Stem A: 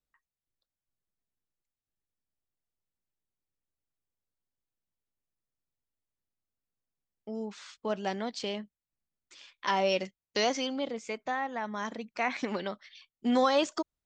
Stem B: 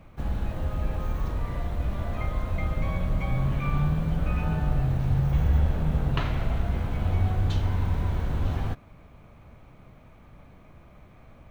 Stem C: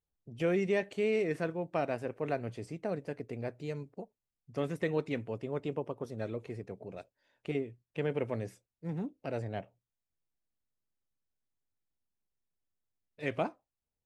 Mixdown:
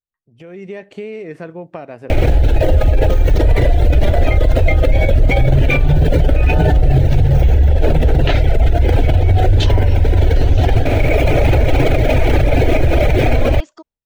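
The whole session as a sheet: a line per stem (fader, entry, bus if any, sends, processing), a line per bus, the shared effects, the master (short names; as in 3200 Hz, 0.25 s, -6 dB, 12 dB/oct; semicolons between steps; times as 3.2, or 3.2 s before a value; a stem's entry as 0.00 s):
-14.5 dB, 0.00 s, no bus, no send, dry
-2.5 dB, 2.10 s, bus A, no send, reverb removal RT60 1 s; fixed phaser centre 460 Hz, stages 4; fast leveller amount 100%
-9.5 dB, 0.00 s, bus A, no send, compressor, threshold -39 dBFS, peak gain reduction 13 dB
bus A: 0.0 dB, AGC gain up to 11.5 dB; limiter -14 dBFS, peak gain reduction 10.5 dB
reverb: off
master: high shelf 5100 Hz -9.5 dB; AGC gain up to 11 dB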